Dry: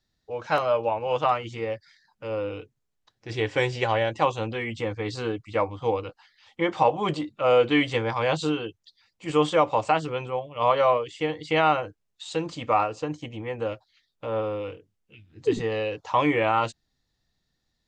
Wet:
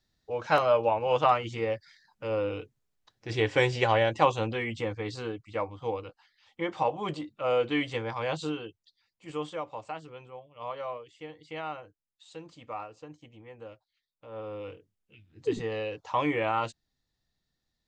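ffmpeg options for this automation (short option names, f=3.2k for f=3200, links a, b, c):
-af "volume=10.5dB,afade=t=out:st=4.33:d=1.01:silence=0.446684,afade=t=out:st=8.49:d=1.17:silence=0.354813,afade=t=in:st=14.29:d=0.43:silence=0.298538"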